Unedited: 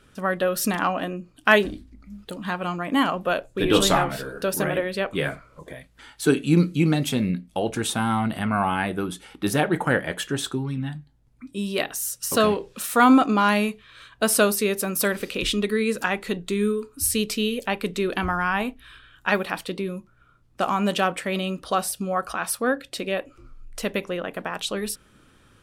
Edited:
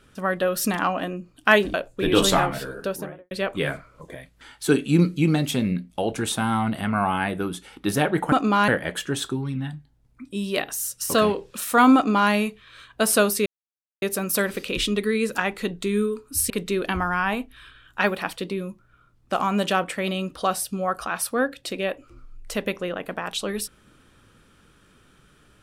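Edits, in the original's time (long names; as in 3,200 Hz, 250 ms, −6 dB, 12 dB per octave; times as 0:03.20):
0:01.74–0:03.32: remove
0:04.28–0:04.89: fade out and dull
0:13.17–0:13.53: duplicate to 0:09.90
0:14.68: splice in silence 0.56 s
0:17.16–0:17.78: remove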